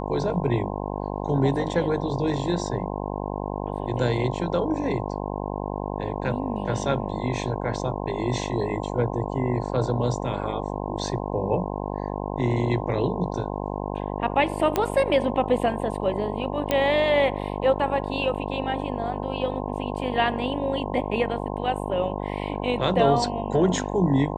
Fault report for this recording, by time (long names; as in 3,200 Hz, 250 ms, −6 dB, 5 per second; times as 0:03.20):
mains buzz 50 Hz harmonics 21 −30 dBFS
0:14.76: click −8 dBFS
0:16.71: click −9 dBFS